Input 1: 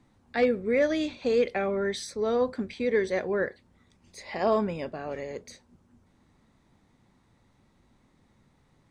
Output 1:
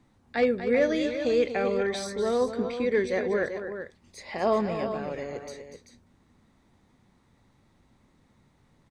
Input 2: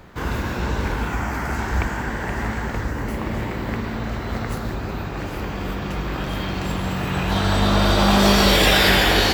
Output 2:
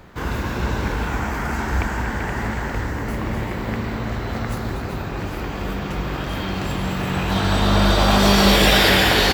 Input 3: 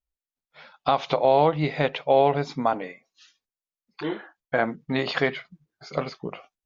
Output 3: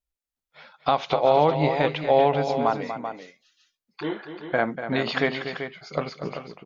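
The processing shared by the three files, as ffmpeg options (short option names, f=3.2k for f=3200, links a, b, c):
-af "aecho=1:1:241|387:0.316|0.335"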